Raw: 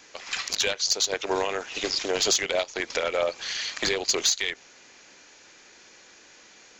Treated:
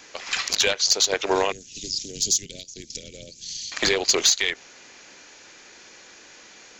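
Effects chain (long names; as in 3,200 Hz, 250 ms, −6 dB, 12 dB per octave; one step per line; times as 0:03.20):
0:01.52–0:03.72: Chebyshev band-stop filter 170–6,300 Hz, order 2
level +4.5 dB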